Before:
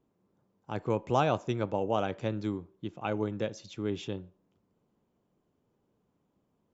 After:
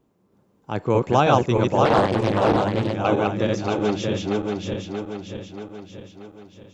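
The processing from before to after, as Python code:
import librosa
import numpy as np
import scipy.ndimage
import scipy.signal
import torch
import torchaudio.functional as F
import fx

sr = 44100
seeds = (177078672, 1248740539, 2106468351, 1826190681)

y = fx.reverse_delay_fb(x, sr, ms=316, feedback_pct=71, wet_db=-1)
y = fx.doppler_dist(y, sr, depth_ms=0.71, at=(1.85, 2.95))
y = y * librosa.db_to_amplitude(8.5)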